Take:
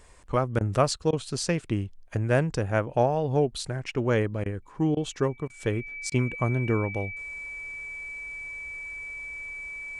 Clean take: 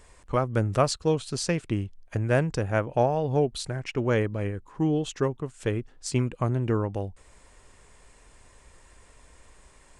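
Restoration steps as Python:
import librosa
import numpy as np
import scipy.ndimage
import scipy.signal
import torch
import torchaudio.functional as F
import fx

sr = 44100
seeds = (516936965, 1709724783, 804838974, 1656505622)

y = fx.notch(x, sr, hz=2300.0, q=30.0)
y = fx.fix_interpolate(y, sr, at_s=(0.59, 1.11, 4.44, 4.95, 5.48, 6.1), length_ms=17.0)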